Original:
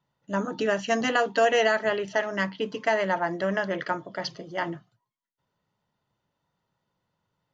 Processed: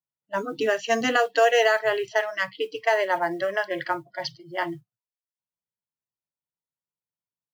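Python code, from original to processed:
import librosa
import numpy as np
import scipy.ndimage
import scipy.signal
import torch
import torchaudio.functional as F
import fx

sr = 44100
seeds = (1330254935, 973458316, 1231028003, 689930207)

y = fx.noise_reduce_blind(x, sr, reduce_db=29)
y = fx.env_lowpass(y, sr, base_hz=2500.0, full_db=-23.0)
y = fx.mod_noise(y, sr, seeds[0], snr_db=34)
y = y * 10.0 ** (2.5 / 20.0)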